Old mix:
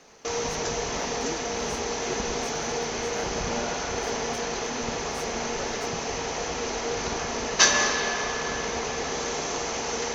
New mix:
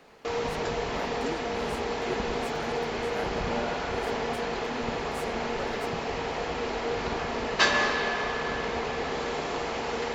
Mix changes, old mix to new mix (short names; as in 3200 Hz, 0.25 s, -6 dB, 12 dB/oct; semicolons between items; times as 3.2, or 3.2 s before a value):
speech: send on; background: remove synth low-pass 6200 Hz, resonance Q 9.7